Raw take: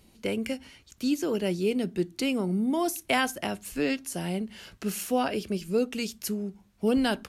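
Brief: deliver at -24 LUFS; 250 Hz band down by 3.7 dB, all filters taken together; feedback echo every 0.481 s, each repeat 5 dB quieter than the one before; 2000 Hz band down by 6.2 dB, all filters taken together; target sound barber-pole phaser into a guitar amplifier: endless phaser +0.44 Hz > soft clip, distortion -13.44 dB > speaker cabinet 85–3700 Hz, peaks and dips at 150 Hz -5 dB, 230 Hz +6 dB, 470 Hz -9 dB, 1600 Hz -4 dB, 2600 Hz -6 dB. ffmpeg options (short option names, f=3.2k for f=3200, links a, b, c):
-filter_complex "[0:a]equalizer=f=250:t=o:g=-7,equalizer=f=2k:t=o:g=-3,aecho=1:1:481|962|1443|1924|2405|2886|3367:0.562|0.315|0.176|0.0988|0.0553|0.031|0.0173,asplit=2[a][b];[b]afreqshift=0.44[c];[a][c]amix=inputs=2:normalize=1,asoftclip=threshold=-28dB,highpass=85,equalizer=f=150:t=q:w=4:g=-5,equalizer=f=230:t=q:w=4:g=6,equalizer=f=470:t=q:w=4:g=-9,equalizer=f=1.6k:t=q:w=4:g=-4,equalizer=f=2.6k:t=q:w=4:g=-6,lowpass=f=3.7k:w=0.5412,lowpass=f=3.7k:w=1.3066,volume=13.5dB"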